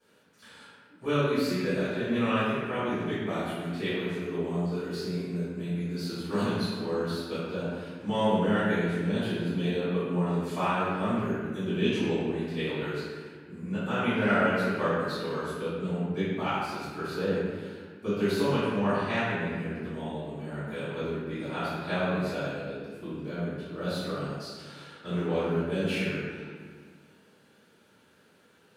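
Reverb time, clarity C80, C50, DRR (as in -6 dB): 1.6 s, -1.0 dB, -4.0 dB, -18.5 dB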